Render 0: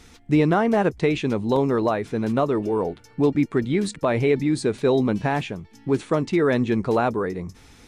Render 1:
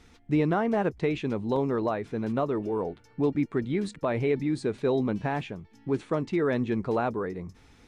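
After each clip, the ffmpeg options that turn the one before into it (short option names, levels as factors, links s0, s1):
-af "highshelf=f=5400:g=-9.5,volume=0.501"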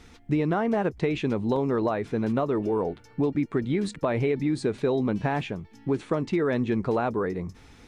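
-af "acompressor=threshold=0.0501:ratio=6,volume=1.78"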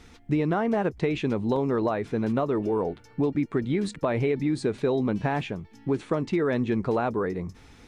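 -af anull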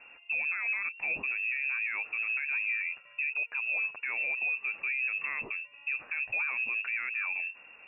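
-af "lowpass=f=2400:t=q:w=0.5098,lowpass=f=2400:t=q:w=0.6013,lowpass=f=2400:t=q:w=0.9,lowpass=f=2400:t=q:w=2.563,afreqshift=-2800,alimiter=limit=0.075:level=0:latency=1:release=40,volume=0.794"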